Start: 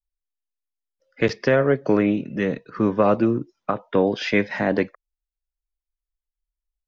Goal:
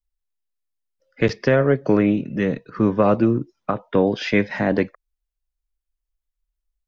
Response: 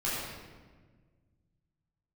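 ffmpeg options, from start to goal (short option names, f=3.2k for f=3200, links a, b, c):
-af "lowshelf=f=170:g=7"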